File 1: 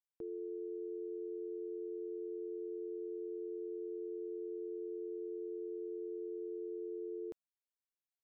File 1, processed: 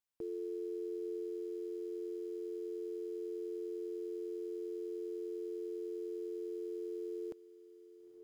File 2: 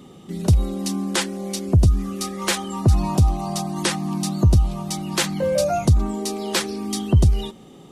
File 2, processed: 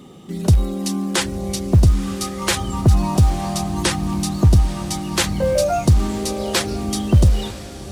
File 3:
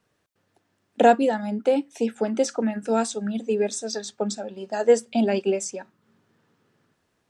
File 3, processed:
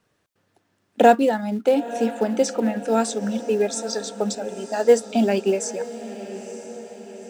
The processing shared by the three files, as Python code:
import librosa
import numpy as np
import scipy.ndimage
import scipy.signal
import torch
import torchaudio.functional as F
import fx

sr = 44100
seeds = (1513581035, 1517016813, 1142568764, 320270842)

p1 = fx.quant_float(x, sr, bits=2)
p2 = x + F.gain(torch.from_numpy(p1), -10.5).numpy()
y = fx.echo_diffused(p2, sr, ms=926, feedback_pct=55, wet_db=-14)